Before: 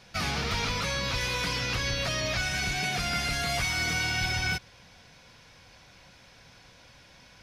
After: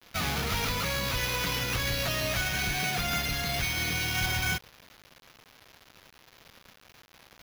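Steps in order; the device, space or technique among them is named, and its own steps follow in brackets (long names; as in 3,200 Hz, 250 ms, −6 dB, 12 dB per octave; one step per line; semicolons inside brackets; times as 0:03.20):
0:03.22–0:04.15: parametric band 1,100 Hz −9 dB 1 octave
early 8-bit sampler (sample-rate reduction 8,400 Hz, jitter 0%; bit reduction 8 bits)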